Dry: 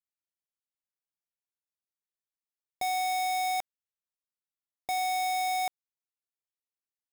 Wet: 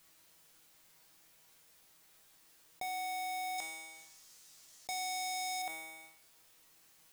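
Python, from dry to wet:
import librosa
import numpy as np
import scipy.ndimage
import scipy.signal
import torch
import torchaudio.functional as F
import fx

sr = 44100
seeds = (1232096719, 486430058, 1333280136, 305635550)

y = fx.peak_eq(x, sr, hz=6100.0, db=11.0, octaves=1.4, at=(3.58, 5.62))
y = fx.comb_fb(y, sr, f0_hz=160.0, decay_s=0.5, harmonics='all', damping=0.0, mix_pct=80)
y = fx.env_flatten(y, sr, amount_pct=70)
y = F.gain(torch.from_numpy(y), 1.0).numpy()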